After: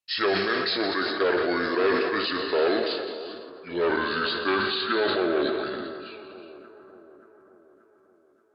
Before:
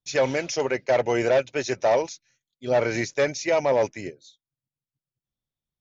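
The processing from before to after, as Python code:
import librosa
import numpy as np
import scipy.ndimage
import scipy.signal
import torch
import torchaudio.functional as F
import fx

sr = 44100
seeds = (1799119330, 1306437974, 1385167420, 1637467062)

p1 = fx.speed_glide(x, sr, from_pct=75, to_pct=61)
p2 = fx.highpass(p1, sr, hz=1000.0, slope=6)
p3 = p2 + fx.echo_split(p2, sr, split_hz=1400.0, low_ms=580, high_ms=167, feedback_pct=52, wet_db=-15.0, dry=0)
p4 = fx.rev_gated(p3, sr, seeds[0], gate_ms=440, shape='flat', drr_db=6.5)
p5 = fx.sustainer(p4, sr, db_per_s=28.0)
y = p5 * 10.0 ** (3.5 / 20.0)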